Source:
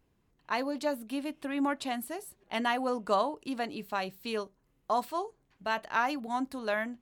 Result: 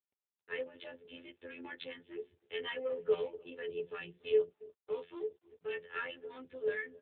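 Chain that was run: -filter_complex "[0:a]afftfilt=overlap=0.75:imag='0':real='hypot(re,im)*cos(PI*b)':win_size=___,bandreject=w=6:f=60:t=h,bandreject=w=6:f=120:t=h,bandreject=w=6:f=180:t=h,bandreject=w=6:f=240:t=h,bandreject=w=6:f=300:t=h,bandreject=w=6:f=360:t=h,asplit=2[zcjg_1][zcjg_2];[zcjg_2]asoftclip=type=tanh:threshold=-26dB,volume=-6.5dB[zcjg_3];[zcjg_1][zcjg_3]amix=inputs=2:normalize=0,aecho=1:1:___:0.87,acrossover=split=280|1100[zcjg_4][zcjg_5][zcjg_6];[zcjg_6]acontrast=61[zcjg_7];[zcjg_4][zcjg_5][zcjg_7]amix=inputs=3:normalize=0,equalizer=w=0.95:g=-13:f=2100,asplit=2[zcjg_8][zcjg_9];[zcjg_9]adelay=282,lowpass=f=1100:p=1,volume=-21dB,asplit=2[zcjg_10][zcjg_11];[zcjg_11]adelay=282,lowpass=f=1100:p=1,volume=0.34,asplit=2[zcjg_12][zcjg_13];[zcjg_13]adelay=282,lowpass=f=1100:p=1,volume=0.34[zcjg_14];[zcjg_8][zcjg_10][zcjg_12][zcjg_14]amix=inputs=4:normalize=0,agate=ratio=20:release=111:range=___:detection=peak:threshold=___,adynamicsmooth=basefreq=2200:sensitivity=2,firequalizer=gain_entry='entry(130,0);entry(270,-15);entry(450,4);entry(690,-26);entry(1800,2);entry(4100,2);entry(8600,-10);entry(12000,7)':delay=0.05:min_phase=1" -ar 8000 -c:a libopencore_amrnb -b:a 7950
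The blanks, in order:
2048, 2.3, -30dB, -57dB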